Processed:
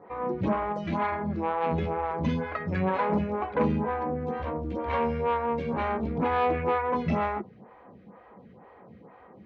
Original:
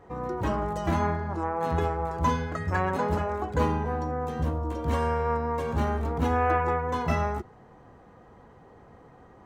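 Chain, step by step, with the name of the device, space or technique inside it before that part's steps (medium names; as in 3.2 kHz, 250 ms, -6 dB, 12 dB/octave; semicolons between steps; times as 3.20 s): 0.72–1.12 s: bass shelf 410 Hz -7.5 dB; vibe pedal into a guitar amplifier (lamp-driven phase shifter 2.1 Hz; valve stage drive 22 dB, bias 0.3; cabinet simulation 80–4200 Hz, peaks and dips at 200 Hz +10 dB, 540 Hz +4 dB, 1 kHz +3 dB, 2.3 kHz +8 dB); trim +2.5 dB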